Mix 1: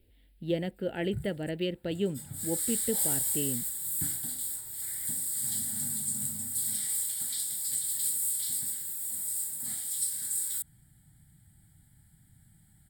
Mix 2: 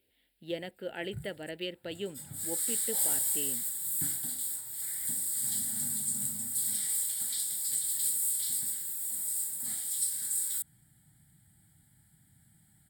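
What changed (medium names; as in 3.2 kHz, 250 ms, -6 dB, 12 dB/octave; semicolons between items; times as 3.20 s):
speech: add high-pass 750 Hz 6 dB/octave; background: add high-pass 160 Hz 6 dB/octave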